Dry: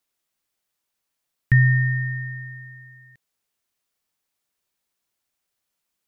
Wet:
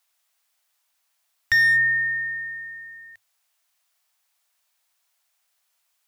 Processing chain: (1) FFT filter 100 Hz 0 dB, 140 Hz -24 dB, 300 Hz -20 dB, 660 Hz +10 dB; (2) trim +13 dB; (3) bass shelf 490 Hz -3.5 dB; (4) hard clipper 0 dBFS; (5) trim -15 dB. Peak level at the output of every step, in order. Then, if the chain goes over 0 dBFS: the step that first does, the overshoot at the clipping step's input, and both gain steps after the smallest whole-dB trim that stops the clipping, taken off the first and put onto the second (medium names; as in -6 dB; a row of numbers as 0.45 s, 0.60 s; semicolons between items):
-5.0 dBFS, +8.0 dBFS, +7.0 dBFS, 0.0 dBFS, -15.0 dBFS; step 2, 7.0 dB; step 2 +6 dB, step 5 -8 dB